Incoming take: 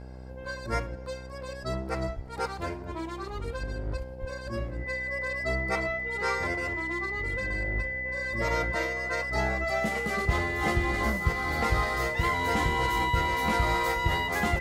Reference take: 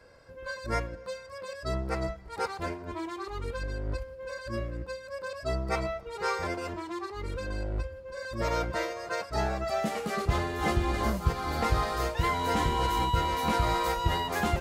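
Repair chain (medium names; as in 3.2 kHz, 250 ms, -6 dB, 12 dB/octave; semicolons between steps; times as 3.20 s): de-hum 63.8 Hz, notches 14; band-stop 2 kHz, Q 30; 2.15–2.27 s: high-pass 140 Hz 24 dB/octave; 4.20–4.32 s: high-pass 140 Hz 24 dB/octave; inverse comb 71 ms -21.5 dB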